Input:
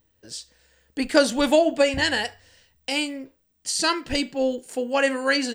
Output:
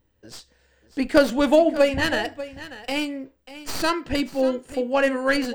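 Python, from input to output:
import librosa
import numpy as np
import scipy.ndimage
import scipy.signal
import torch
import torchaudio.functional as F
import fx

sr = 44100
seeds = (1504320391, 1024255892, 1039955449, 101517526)

y = fx.tracing_dist(x, sr, depth_ms=0.089)
y = fx.high_shelf(y, sr, hz=3000.0, db=-10.5)
y = y + 10.0 ** (-15.0 / 20.0) * np.pad(y, (int(591 * sr / 1000.0), 0))[:len(y)]
y = y * 10.0 ** (2.0 / 20.0)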